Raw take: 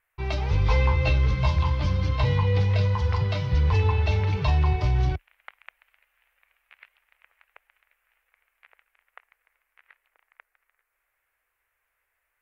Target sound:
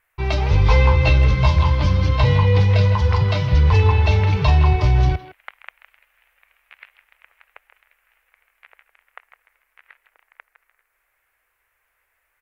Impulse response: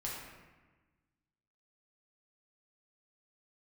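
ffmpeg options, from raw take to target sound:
-filter_complex "[0:a]asplit=2[link_01][link_02];[link_02]adelay=160,highpass=300,lowpass=3400,asoftclip=type=hard:threshold=-20.5dB,volume=-12dB[link_03];[link_01][link_03]amix=inputs=2:normalize=0,volume=7dB"

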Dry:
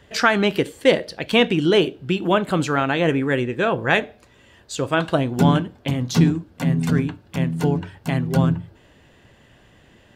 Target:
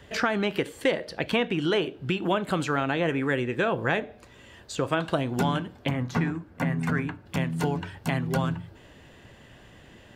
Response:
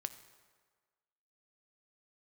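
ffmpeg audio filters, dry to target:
-filter_complex "[0:a]acrossover=split=710|2400[link_01][link_02][link_03];[link_01]acompressor=threshold=-28dB:ratio=4[link_04];[link_02]acompressor=threshold=-30dB:ratio=4[link_05];[link_03]acompressor=threshold=-41dB:ratio=4[link_06];[link_04][link_05][link_06]amix=inputs=3:normalize=0,asettb=1/sr,asplit=3[link_07][link_08][link_09];[link_07]atrim=end=5.894[link_10];[link_08]atrim=start=5.89:end=7.26,asetpts=PTS-STARTPTS,afade=type=in:duration=0.004:curve=qsin,afade=type=out:start_time=1.366:duration=0.004:curve=qsin,highshelf=frequency=2600:width_type=q:width=1.5:gain=-7[link_11];[link_09]atrim=start=7.256[link_12];[link_10][link_11]acrossfade=duration=0.004:curve1=hsin:curve2=qsin[link_13];[link_13][link_12]acrossfade=duration=0.004:curve1=qsin:curve2=hsin,volume=1.5dB"

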